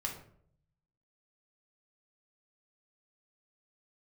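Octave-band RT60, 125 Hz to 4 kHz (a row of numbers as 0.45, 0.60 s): 1.2, 0.80, 0.70, 0.55, 0.45, 0.35 s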